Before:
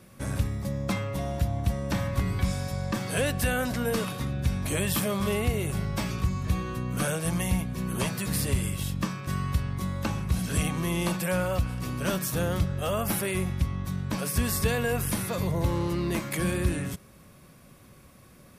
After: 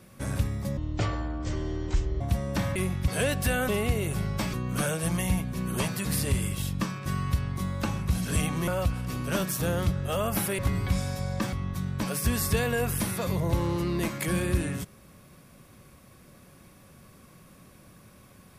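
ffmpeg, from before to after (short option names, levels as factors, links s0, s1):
-filter_complex "[0:a]asplit=10[s0][s1][s2][s3][s4][s5][s6][s7][s8][s9];[s0]atrim=end=0.774[s10];[s1]atrim=start=0.77:end=1.56,asetpts=PTS-STARTPTS,asetrate=24255,aresample=44100[s11];[s2]atrim=start=1.556:end=2.112[s12];[s3]atrim=start=13.318:end=13.642[s13];[s4]atrim=start=3.048:end=3.662[s14];[s5]atrim=start=5.268:end=6.122[s15];[s6]atrim=start=6.748:end=10.892[s16];[s7]atrim=start=11.408:end=13.322[s17];[s8]atrim=start=2.108:end=3.052[s18];[s9]atrim=start=13.638[s19];[s10][s11]acrossfade=d=0.004:c1=hsin:c2=hsin[s20];[s20][s12]acrossfade=d=0.004:c1=hsin:c2=hsin[s21];[s21][s13]acrossfade=d=0.004:c1=hsin:c2=hsin[s22];[s22][s14]acrossfade=d=0.004:c1=hsin:c2=hsin[s23];[s23][s15]acrossfade=d=0.004:c1=hsin:c2=hsin[s24];[s24][s16]acrossfade=d=0.004:c1=hsin:c2=hsin[s25];[s25][s17]acrossfade=d=0.004:c1=hsin:c2=hsin[s26];[s26][s18]acrossfade=d=0.004:c1=hsin:c2=hsin[s27];[s27][s19]acrossfade=d=0.004:c1=hsin:c2=hsin"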